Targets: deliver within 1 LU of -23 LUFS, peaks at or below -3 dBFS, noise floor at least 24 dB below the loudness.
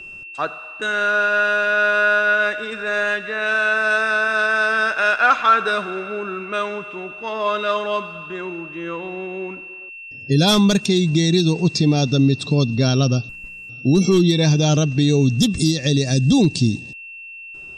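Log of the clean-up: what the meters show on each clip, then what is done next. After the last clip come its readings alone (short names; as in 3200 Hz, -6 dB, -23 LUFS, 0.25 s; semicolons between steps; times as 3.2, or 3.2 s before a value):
steady tone 2700 Hz; tone level -34 dBFS; loudness -18.0 LUFS; peak -4.0 dBFS; loudness target -23.0 LUFS
-> notch 2700 Hz, Q 30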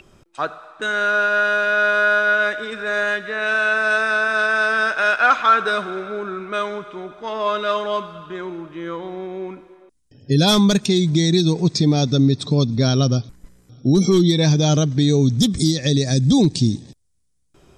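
steady tone none; loudness -18.0 LUFS; peak -4.0 dBFS; loudness target -23.0 LUFS
-> gain -5 dB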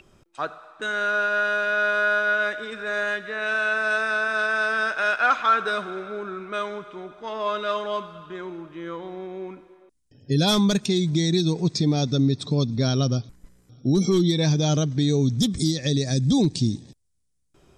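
loudness -23.0 LUFS; peak -9.0 dBFS; noise floor -66 dBFS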